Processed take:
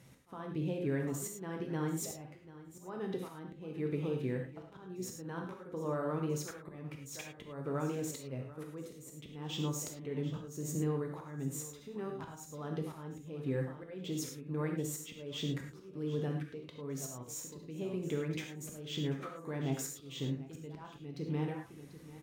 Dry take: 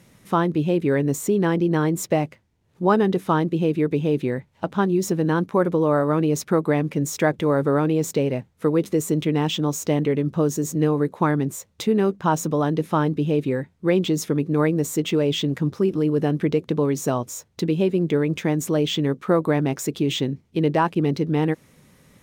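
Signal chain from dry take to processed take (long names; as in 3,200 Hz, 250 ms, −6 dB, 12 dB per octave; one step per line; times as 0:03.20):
echo ahead of the sound 67 ms −20 dB
downward compressor 8 to 1, threshold −25 dBFS, peak gain reduction 12.5 dB
tuned comb filter 130 Hz, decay 0.31 s, harmonics all, mix 50%
on a send: single-tap delay 740 ms −17 dB
on the sum: volume swells 341 ms
reverb whose tail is shaped and stops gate 130 ms flat, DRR 2 dB
level −3.5 dB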